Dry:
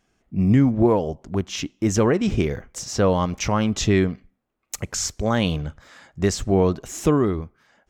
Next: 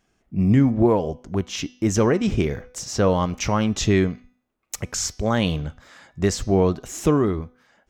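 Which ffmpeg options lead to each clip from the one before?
ffmpeg -i in.wav -af "bandreject=frequency=249.1:width_type=h:width=4,bandreject=frequency=498.2:width_type=h:width=4,bandreject=frequency=747.3:width_type=h:width=4,bandreject=frequency=996.4:width_type=h:width=4,bandreject=frequency=1245.5:width_type=h:width=4,bandreject=frequency=1494.6:width_type=h:width=4,bandreject=frequency=1743.7:width_type=h:width=4,bandreject=frequency=1992.8:width_type=h:width=4,bandreject=frequency=2241.9:width_type=h:width=4,bandreject=frequency=2491:width_type=h:width=4,bandreject=frequency=2740.1:width_type=h:width=4,bandreject=frequency=2989.2:width_type=h:width=4,bandreject=frequency=3238.3:width_type=h:width=4,bandreject=frequency=3487.4:width_type=h:width=4,bandreject=frequency=3736.5:width_type=h:width=4,bandreject=frequency=3985.6:width_type=h:width=4,bandreject=frequency=4234.7:width_type=h:width=4,bandreject=frequency=4483.8:width_type=h:width=4,bandreject=frequency=4732.9:width_type=h:width=4,bandreject=frequency=4982:width_type=h:width=4,bandreject=frequency=5231.1:width_type=h:width=4,bandreject=frequency=5480.2:width_type=h:width=4,bandreject=frequency=5729.3:width_type=h:width=4,bandreject=frequency=5978.4:width_type=h:width=4,bandreject=frequency=6227.5:width_type=h:width=4,bandreject=frequency=6476.6:width_type=h:width=4" out.wav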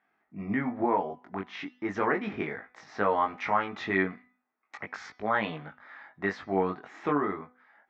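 ffmpeg -i in.wav -af "flanger=delay=19:depth=2.2:speed=0.37,highpass=360,equalizer=frequency=370:width_type=q:width=4:gain=-5,equalizer=frequency=530:width_type=q:width=4:gain=-8,equalizer=frequency=840:width_type=q:width=4:gain=5,equalizer=frequency=1300:width_type=q:width=4:gain=4,equalizer=frequency=1900:width_type=q:width=4:gain=7,equalizer=frequency=2900:width_type=q:width=4:gain=-9,lowpass=frequency=3000:width=0.5412,lowpass=frequency=3000:width=1.3066" out.wav

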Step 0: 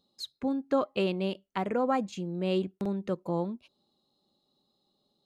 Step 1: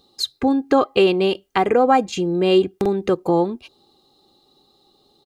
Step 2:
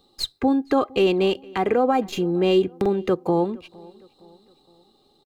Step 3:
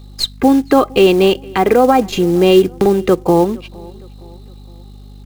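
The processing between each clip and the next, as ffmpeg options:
ffmpeg -i in.wav -filter_complex "[0:a]aecho=1:1:2.5:0.55,asplit=2[link_01][link_02];[link_02]acompressor=threshold=-34dB:ratio=6,volume=1dB[link_03];[link_01][link_03]amix=inputs=2:normalize=0,volume=9dB" out.wav
ffmpeg -i in.wav -filter_complex "[0:a]acrossover=split=280|4200[link_01][link_02][link_03];[link_02]alimiter=limit=-12dB:level=0:latency=1[link_04];[link_03]aeval=exprs='max(val(0),0)':channel_layout=same[link_05];[link_01][link_04][link_05]amix=inputs=3:normalize=0,asplit=2[link_06][link_07];[link_07]adelay=463,lowpass=frequency=3600:poles=1,volume=-24dB,asplit=2[link_08][link_09];[link_09]adelay=463,lowpass=frequency=3600:poles=1,volume=0.48,asplit=2[link_10][link_11];[link_11]adelay=463,lowpass=frequency=3600:poles=1,volume=0.48[link_12];[link_06][link_08][link_10][link_12]amix=inputs=4:normalize=0,volume=-1.5dB" out.wav
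ffmpeg -i in.wav -af "aeval=exprs='val(0)+0.00631*(sin(2*PI*50*n/s)+sin(2*PI*2*50*n/s)/2+sin(2*PI*3*50*n/s)/3+sin(2*PI*4*50*n/s)/4+sin(2*PI*5*50*n/s)/5)':channel_layout=same,acrusher=bits=6:mode=log:mix=0:aa=0.000001,volume=9dB" out.wav

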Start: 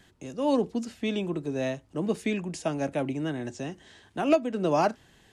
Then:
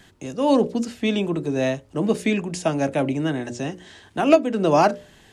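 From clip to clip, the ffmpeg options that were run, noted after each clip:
ffmpeg -i in.wav -af "bandreject=frequency=60:width_type=h:width=6,bandreject=frequency=120:width_type=h:width=6,bandreject=frequency=180:width_type=h:width=6,bandreject=frequency=240:width_type=h:width=6,bandreject=frequency=300:width_type=h:width=6,bandreject=frequency=360:width_type=h:width=6,bandreject=frequency=420:width_type=h:width=6,bandreject=frequency=480:width_type=h:width=6,bandreject=frequency=540:width_type=h:width=6,bandreject=frequency=600:width_type=h:width=6,volume=7.5dB" out.wav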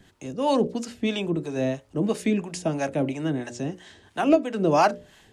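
ffmpeg -i in.wav -filter_complex "[0:a]acrossover=split=560[link_01][link_02];[link_01]aeval=exprs='val(0)*(1-0.7/2+0.7/2*cos(2*PI*3*n/s))':channel_layout=same[link_03];[link_02]aeval=exprs='val(0)*(1-0.7/2-0.7/2*cos(2*PI*3*n/s))':channel_layout=same[link_04];[link_03][link_04]amix=inputs=2:normalize=0" out.wav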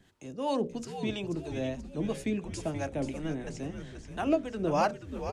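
ffmpeg -i in.wav -filter_complex "[0:a]asplit=7[link_01][link_02][link_03][link_04][link_05][link_06][link_07];[link_02]adelay=482,afreqshift=-110,volume=-9dB[link_08];[link_03]adelay=964,afreqshift=-220,volume=-14.2dB[link_09];[link_04]adelay=1446,afreqshift=-330,volume=-19.4dB[link_10];[link_05]adelay=1928,afreqshift=-440,volume=-24.6dB[link_11];[link_06]adelay=2410,afreqshift=-550,volume=-29.8dB[link_12];[link_07]adelay=2892,afreqshift=-660,volume=-35dB[link_13];[link_01][link_08][link_09][link_10][link_11][link_12][link_13]amix=inputs=7:normalize=0,volume=-8dB" out.wav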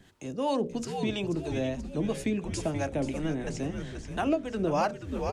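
ffmpeg -i in.wav -af "acompressor=threshold=-33dB:ratio=2,volume=5.5dB" out.wav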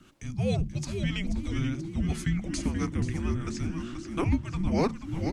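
ffmpeg -i in.wav -af "afreqshift=-380,volume=1.5dB" out.wav

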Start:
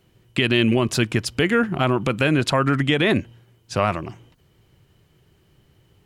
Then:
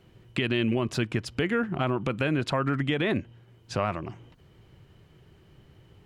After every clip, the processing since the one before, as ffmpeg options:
ffmpeg -i in.wav -af "highshelf=frequency=5300:gain=-11.5,acompressor=threshold=-44dB:ratio=1.5,volume=3dB" out.wav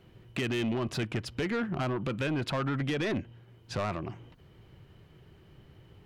ffmpeg -i in.wav -af "equalizer=frequency=7500:width=1.1:gain=-4.5,asoftclip=type=tanh:threshold=-25.5dB" out.wav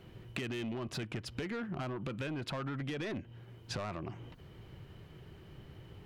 ffmpeg -i in.wav -af "acompressor=threshold=-40dB:ratio=6,volume=3dB" out.wav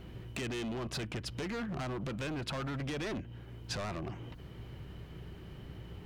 ffmpeg -i in.wav -filter_complex "[0:a]acrossover=split=4700[link_01][link_02];[link_01]asoftclip=type=hard:threshold=-38.5dB[link_03];[link_03][link_02]amix=inputs=2:normalize=0,aeval=exprs='val(0)+0.002*(sin(2*PI*60*n/s)+sin(2*PI*2*60*n/s)/2+sin(2*PI*3*60*n/s)/3+sin(2*PI*4*60*n/s)/4+sin(2*PI*5*60*n/s)/5)':channel_layout=same,volume=3.5dB" out.wav

